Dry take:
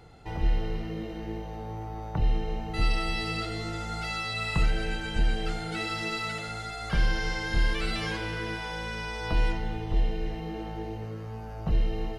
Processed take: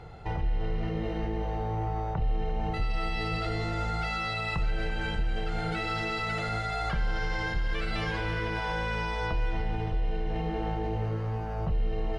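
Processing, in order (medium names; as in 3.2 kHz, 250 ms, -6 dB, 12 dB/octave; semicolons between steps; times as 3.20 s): in parallel at -2.5 dB: compressor with a negative ratio -36 dBFS; on the sum: low-pass 1.9 kHz 6 dB/octave; peaking EQ 270 Hz -8 dB 0.75 oct; peak limiter -21.5 dBFS, peak gain reduction 6 dB; two-band feedback delay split 570 Hz, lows 522 ms, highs 343 ms, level -14.5 dB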